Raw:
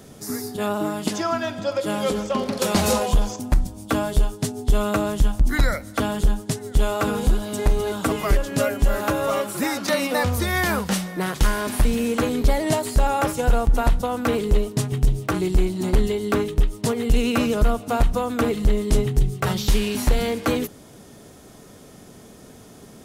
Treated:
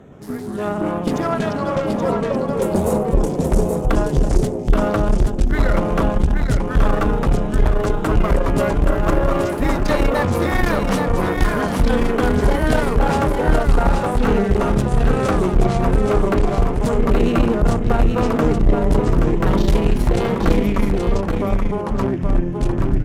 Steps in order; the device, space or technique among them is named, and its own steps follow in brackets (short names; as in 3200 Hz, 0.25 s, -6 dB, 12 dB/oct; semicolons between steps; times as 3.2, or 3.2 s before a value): Wiener smoothing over 9 samples; 1.86–3.21 band shelf 2400 Hz -15 dB 2.8 oct; echoes that change speed 0.124 s, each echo -3 st, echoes 2; tube preamp driven hard (tube stage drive 14 dB, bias 0.65; high shelf 3400 Hz -8 dB); echo 0.826 s -5 dB; gain +5.5 dB